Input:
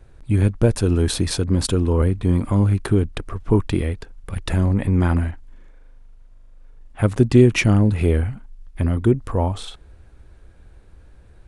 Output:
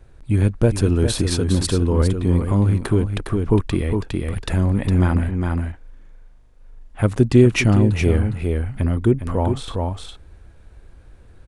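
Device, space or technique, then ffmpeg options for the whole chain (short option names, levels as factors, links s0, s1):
ducked delay: -filter_complex "[0:a]asplit=3[s0][s1][s2];[s1]adelay=409,volume=0.708[s3];[s2]apad=whole_len=523942[s4];[s3][s4]sidechaincompress=threshold=0.1:ratio=4:attack=36:release=632[s5];[s0][s5]amix=inputs=2:normalize=0"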